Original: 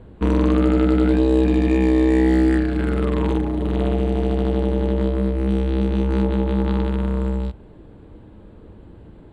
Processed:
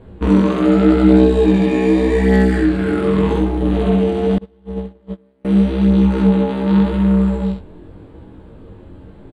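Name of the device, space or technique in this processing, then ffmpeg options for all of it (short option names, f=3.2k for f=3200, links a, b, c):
double-tracked vocal: -filter_complex "[0:a]asplit=2[a][b];[b]adelay=26,volume=-10dB[c];[a][c]amix=inputs=2:normalize=0,aecho=1:1:11|67:0.376|0.668,flanger=delay=15.5:depth=7.5:speed=0.84,asettb=1/sr,asplit=3[d][e][f];[d]atrim=end=4.384[g];[e]atrim=start=4.38:end=5.45,asetpts=PTS-STARTPTS,afade=t=in:d=0.004:c=qsin,afade=t=out:st=1.066:d=0.004:c=qsin,agate=range=-35dB:threshold=-15dB:ratio=16:detection=peak[h];[f]atrim=start=5.446[i];[g][h]acrossfade=d=0.004:c1=hsin:c2=qsin[j];[j][i]acrossfade=d=0.004:c1=qsin:c2=hsin,volume=5.5dB"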